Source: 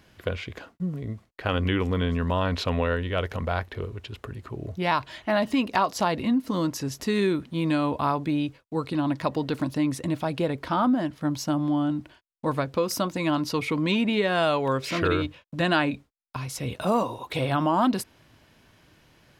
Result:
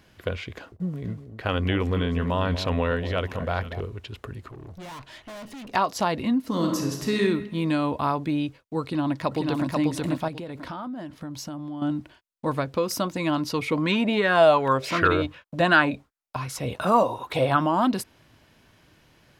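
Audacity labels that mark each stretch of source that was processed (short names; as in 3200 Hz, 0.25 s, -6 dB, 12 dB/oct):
0.480000	3.810000	echo with dull and thin repeats by turns 0.239 s, split 830 Hz, feedback 55%, level -10 dB
4.480000	5.720000	tube stage drive 38 dB, bias 0.55
6.470000	7.200000	reverb throw, RT60 1.1 s, DRR 1.5 dB
8.820000	9.680000	echo throw 0.49 s, feedback 25%, level -2.5 dB
10.280000	11.820000	compressor, threshold -32 dBFS
13.720000	17.610000	LFO bell 2.7 Hz 580–1600 Hz +10 dB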